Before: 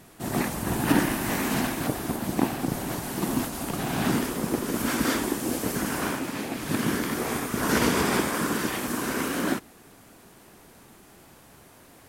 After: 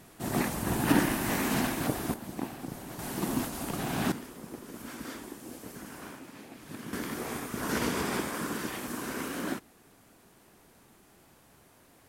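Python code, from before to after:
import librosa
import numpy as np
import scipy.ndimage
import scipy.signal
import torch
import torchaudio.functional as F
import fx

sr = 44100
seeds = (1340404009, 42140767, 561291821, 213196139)

y = fx.gain(x, sr, db=fx.steps((0.0, -2.5), (2.14, -11.5), (2.99, -4.0), (4.12, -16.0), (6.93, -7.5)))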